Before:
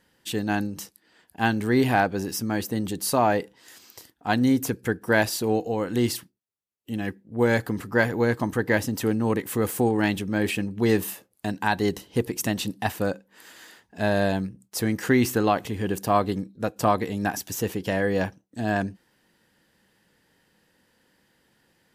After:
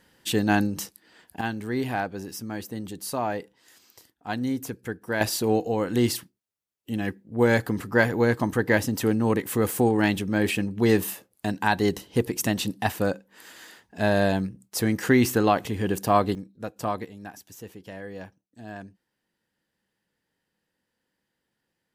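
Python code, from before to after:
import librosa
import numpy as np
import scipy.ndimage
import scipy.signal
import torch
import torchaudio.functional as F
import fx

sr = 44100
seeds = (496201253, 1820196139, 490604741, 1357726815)

y = fx.gain(x, sr, db=fx.steps((0.0, 4.0), (1.41, -7.0), (5.21, 1.0), (16.35, -7.0), (17.05, -14.5)))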